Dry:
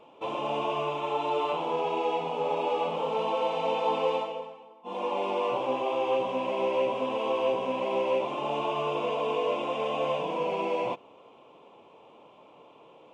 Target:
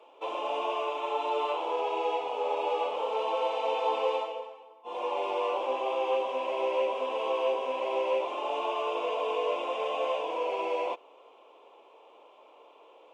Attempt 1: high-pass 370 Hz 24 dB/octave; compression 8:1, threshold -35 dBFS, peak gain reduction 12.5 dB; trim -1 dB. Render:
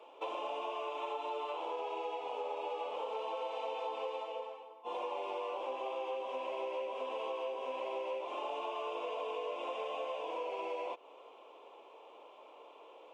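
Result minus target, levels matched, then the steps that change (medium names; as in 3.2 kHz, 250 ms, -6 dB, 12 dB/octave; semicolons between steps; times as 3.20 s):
compression: peak gain reduction +12.5 dB
remove: compression 8:1, threshold -35 dBFS, peak gain reduction 12.5 dB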